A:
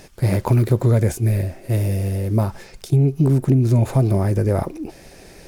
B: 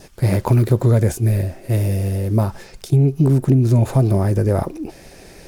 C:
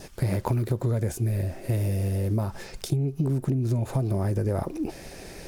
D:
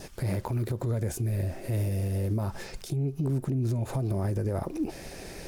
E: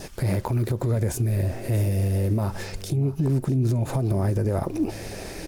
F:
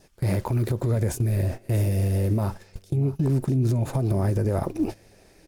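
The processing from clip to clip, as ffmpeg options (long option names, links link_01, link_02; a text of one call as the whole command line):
ffmpeg -i in.wav -af "adynamicequalizer=threshold=0.00224:dfrequency=2200:dqfactor=5:tfrequency=2200:tqfactor=5:attack=5:release=100:ratio=0.375:range=2:mode=cutabove:tftype=bell,volume=1.5dB" out.wav
ffmpeg -i in.wav -af "acompressor=threshold=-23dB:ratio=6" out.wav
ffmpeg -i in.wav -af "alimiter=limit=-21.5dB:level=0:latency=1:release=88" out.wav
ffmpeg -i in.wav -af "aecho=1:1:638:0.141,volume=5.5dB" out.wav
ffmpeg -i in.wav -af "agate=range=-19dB:threshold=-28dB:ratio=16:detection=peak" out.wav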